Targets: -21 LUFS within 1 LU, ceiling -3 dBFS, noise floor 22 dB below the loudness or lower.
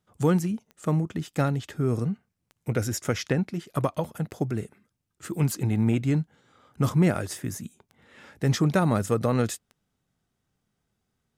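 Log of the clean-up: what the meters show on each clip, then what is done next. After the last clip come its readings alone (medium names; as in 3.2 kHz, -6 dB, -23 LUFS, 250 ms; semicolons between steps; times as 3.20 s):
clicks found 6; loudness -27.0 LUFS; peak level -11.0 dBFS; loudness target -21.0 LUFS
-> de-click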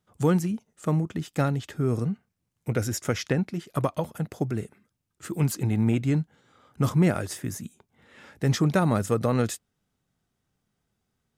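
clicks found 0; loudness -27.0 LUFS; peak level -11.0 dBFS; loudness target -21.0 LUFS
-> trim +6 dB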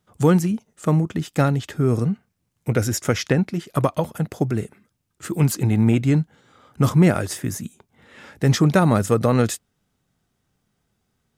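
loudness -21.0 LUFS; peak level -5.0 dBFS; noise floor -73 dBFS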